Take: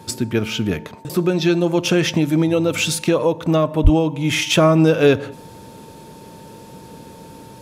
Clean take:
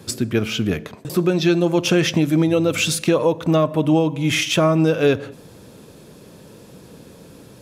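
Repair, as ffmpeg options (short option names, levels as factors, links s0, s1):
-filter_complex "[0:a]bandreject=f=900:w=30,asplit=3[s0][s1][s2];[s0]afade=t=out:st=3.83:d=0.02[s3];[s1]highpass=f=140:w=0.5412,highpass=f=140:w=1.3066,afade=t=in:st=3.83:d=0.02,afade=t=out:st=3.95:d=0.02[s4];[s2]afade=t=in:st=3.95:d=0.02[s5];[s3][s4][s5]amix=inputs=3:normalize=0,asetnsamples=n=441:p=0,asendcmd='4.5 volume volume -3dB',volume=1"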